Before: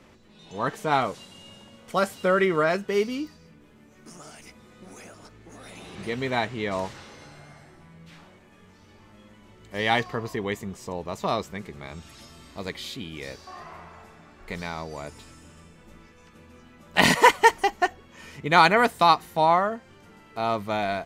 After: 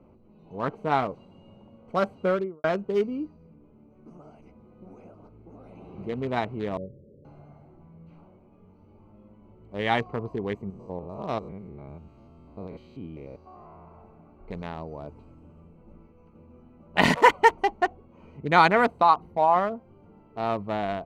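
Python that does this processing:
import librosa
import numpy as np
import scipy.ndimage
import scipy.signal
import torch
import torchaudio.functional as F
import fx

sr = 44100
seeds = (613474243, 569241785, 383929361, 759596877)

y = fx.studio_fade_out(x, sr, start_s=2.21, length_s=0.43)
y = fx.cheby_ripple(y, sr, hz=590.0, ripple_db=6, at=(6.77, 7.25))
y = fx.spec_steps(y, sr, hold_ms=100, at=(10.7, 13.88))
y = fx.envelope_sharpen(y, sr, power=1.5, at=(19.01, 19.56))
y = fx.wiener(y, sr, points=25)
y = fx.high_shelf(y, sr, hz=4200.0, db=-11.5)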